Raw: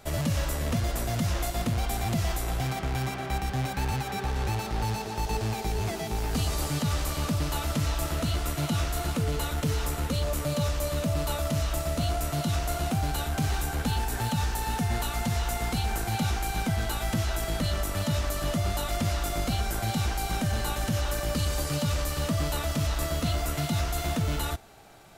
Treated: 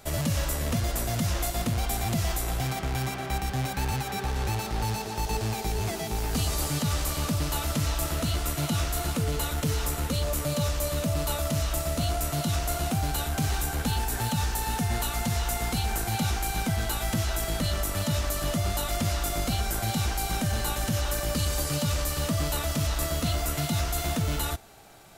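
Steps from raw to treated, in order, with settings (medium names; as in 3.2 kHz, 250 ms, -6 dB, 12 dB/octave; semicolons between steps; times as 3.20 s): treble shelf 5.4 kHz +5.5 dB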